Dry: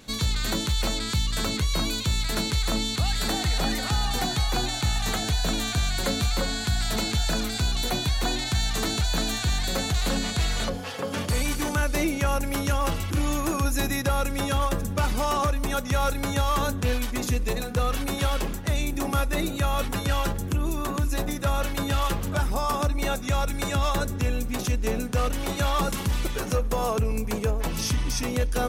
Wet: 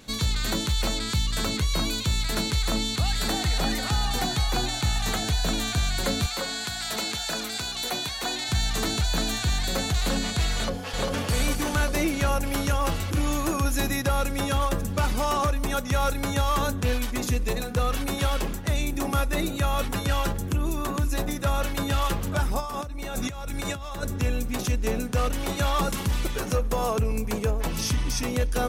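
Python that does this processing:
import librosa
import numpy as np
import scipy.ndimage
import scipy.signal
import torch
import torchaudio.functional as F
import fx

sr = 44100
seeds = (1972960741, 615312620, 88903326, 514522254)

y = fx.highpass(x, sr, hz=480.0, slope=6, at=(6.26, 8.49))
y = fx.echo_throw(y, sr, start_s=10.53, length_s=0.41, ms=400, feedback_pct=80, wet_db=-2.5)
y = fx.over_compress(y, sr, threshold_db=-32.0, ratio=-1.0, at=(22.6, 24.03))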